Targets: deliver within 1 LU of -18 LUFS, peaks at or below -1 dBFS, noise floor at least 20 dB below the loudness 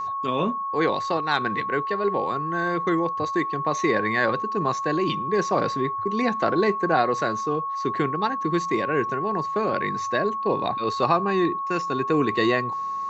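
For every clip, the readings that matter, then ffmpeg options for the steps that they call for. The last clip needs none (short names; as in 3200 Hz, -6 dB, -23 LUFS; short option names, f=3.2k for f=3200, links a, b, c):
steady tone 1100 Hz; tone level -26 dBFS; loudness -24.0 LUFS; peak -6.5 dBFS; loudness target -18.0 LUFS
-> -af "bandreject=f=1.1k:w=30"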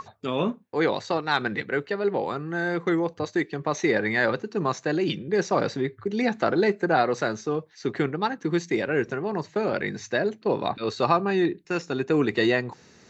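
steady tone none; loudness -26.0 LUFS; peak -7.5 dBFS; loudness target -18.0 LUFS
-> -af "volume=8dB,alimiter=limit=-1dB:level=0:latency=1"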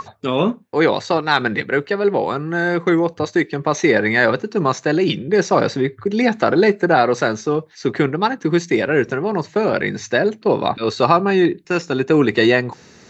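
loudness -18.0 LUFS; peak -1.0 dBFS; noise floor -47 dBFS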